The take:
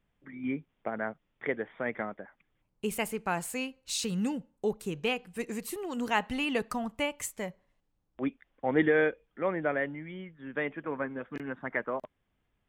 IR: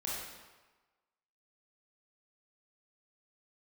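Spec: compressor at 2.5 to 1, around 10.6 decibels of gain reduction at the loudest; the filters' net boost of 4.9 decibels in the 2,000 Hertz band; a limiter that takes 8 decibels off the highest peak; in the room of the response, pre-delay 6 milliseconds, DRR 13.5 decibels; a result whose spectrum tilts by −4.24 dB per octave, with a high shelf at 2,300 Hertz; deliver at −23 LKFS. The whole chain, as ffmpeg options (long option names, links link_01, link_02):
-filter_complex "[0:a]equalizer=frequency=2000:width_type=o:gain=8.5,highshelf=frequency=2300:gain=-5,acompressor=threshold=-35dB:ratio=2.5,alimiter=level_in=3.5dB:limit=-24dB:level=0:latency=1,volume=-3.5dB,asplit=2[link_01][link_02];[1:a]atrim=start_sample=2205,adelay=6[link_03];[link_02][link_03]afir=irnorm=-1:irlink=0,volume=-16.5dB[link_04];[link_01][link_04]amix=inputs=2:normalize=0,volume=17dB"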